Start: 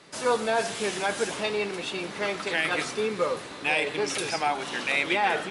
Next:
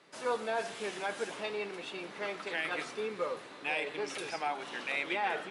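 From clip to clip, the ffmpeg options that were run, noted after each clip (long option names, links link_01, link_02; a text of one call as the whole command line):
ffmpeg -i in.wav -af "highpass=110,bass=frequency=250:gain=-5,treble=frequency=4000:gain=-6,volume=-8dB" out.wav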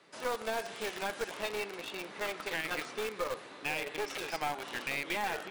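ffmpeg -i in.wav -filter_complex "[0:a]acrossover=split=410|6300[link_01][link_02][link_03];[link_01]acompressor=threshold=-48dB:ratio=4[link_04];[link_02]acompressor=threshold=-35dB:ratio=4[link_05];[link_03]acompressor=threshold=-59dB:ratio=4[link_06];[link_04][link_05][link_06]amix=inputs=3:normalize=0,asplit=2[link_07][link_08];[link_08]acrusher=bits=3:dc=4:mix=0:aa=0.000001,volume=-3dB[link_09];[link_07][link_09]amix=inputs=2:normalize=0" out.wav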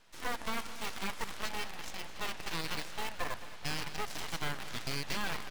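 ffmpeg -i in.wav -af "aeval=exprs='abs(val(0))':channel_layout=same,aecho=1:1:215|430|645|860|1075|1290:0.178|0.105|0.0619|0.0365|0.0215|0.0127" out.wav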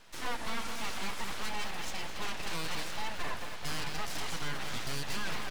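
ffmpeg -i in.wav -af "asoftclip=type=hard:threshold=-33dB,volume=6.5dB" out.wav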